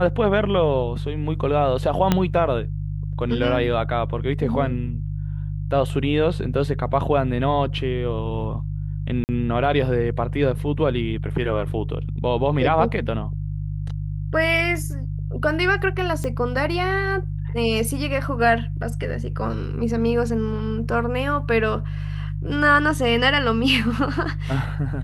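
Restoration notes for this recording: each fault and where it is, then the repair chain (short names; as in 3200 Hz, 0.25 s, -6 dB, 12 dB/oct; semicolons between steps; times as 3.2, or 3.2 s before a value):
hum 50 Hz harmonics 3 -27 dBFS
2.12 pop -4 dBFS
9.24–9.29 gap 49 ms
16.24 pop -15 dBFS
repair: de-click; de-hum 50 Hz, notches 3; interpolate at 9.24, 49 ms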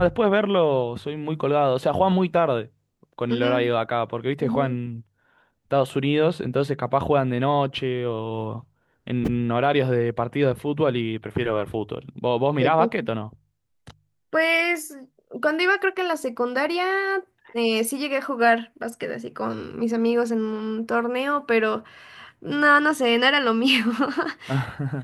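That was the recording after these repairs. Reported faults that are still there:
2.12 pop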